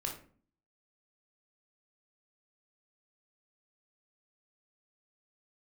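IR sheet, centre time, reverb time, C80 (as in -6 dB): 23 ms, 0.45 s, 12.5 dB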